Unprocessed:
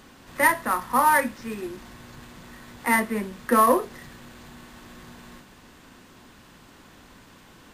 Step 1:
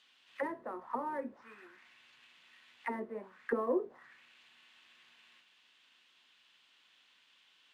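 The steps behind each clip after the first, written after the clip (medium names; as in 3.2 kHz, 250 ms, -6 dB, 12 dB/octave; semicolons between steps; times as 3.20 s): auto-wah 380–3400 Hz, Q 2.7, down, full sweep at -20 dBFS; trim -5.5 dB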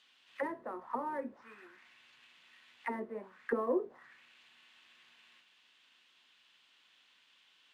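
no audible change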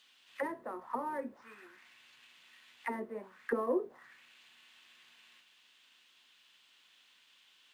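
treble shelf 6.8 kHz +11 dB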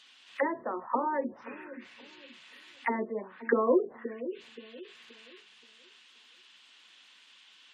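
feedback echo behind a low-pass 526 ms, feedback 31%, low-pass 420 Hz, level -9.5 dB; spectral gate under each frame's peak -25 dB strong; trim +7.5 dB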